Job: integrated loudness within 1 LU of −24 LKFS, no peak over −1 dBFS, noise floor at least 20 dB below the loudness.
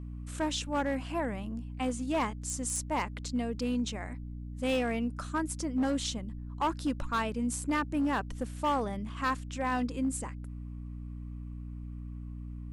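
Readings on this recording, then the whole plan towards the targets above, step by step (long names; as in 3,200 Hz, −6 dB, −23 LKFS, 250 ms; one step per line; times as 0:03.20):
share of clipped samples 1.1%; peaks flattened at −24.0 dBFS; mains hum 60 Hz; hum harmonics up to 300 Hz; level of the hum −39 dBFS; integrated loudness −33.5 LKFS; sample peak −24.0 dBFS; target loudness −24.0 LKFS
→ clipped peaks rebuilt −24 dBFS
mains-hum notches 60/120/180/240/300 Hz
level +9.5 dB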